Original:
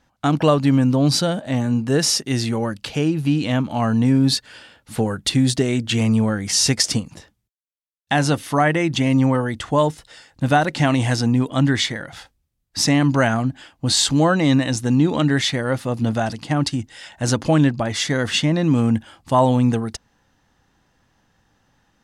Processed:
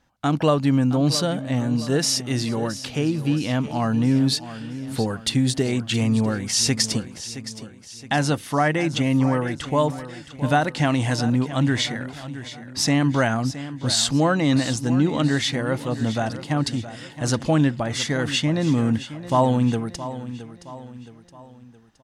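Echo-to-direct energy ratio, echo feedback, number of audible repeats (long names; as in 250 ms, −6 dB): −12.5 dB, 45%, 4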